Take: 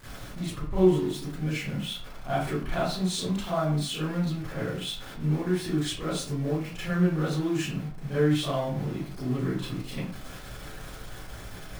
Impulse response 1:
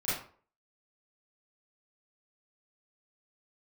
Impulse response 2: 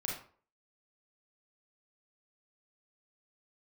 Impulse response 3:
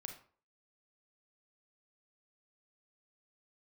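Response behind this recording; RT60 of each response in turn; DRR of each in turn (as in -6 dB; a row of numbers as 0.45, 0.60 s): 1; 0.45, 0.45, 0.45 s; -12.5, -3.0, 4.0 dB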